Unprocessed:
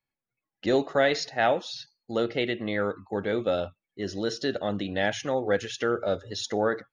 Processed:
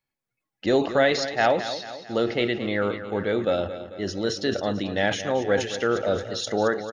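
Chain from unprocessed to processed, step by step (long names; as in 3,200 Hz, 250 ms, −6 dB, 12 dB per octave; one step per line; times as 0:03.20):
on a send: repeating echo 221 ms, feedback 51%, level −12 dB
on the sum: level that may fall only so fast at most 120 dB per second
level +2.5 dB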